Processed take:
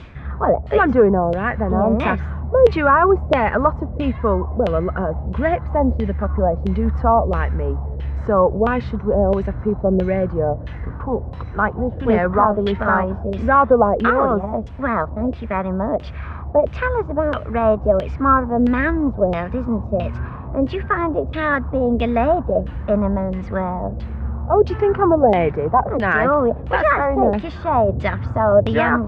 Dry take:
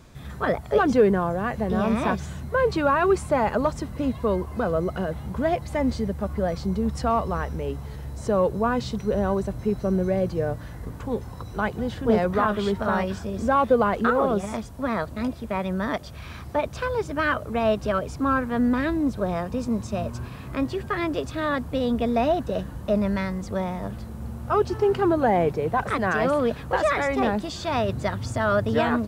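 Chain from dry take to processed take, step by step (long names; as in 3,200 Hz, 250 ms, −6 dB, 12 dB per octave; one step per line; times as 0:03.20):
parametric band 68 Hz +8.5 dB 0.69 octaves
reversed playback
upward compression, threshold −29 dBFS
reversed playback
auto-filter low-pass saw down 1.5 Hz 500–3,100 Hz
level +3.5 dB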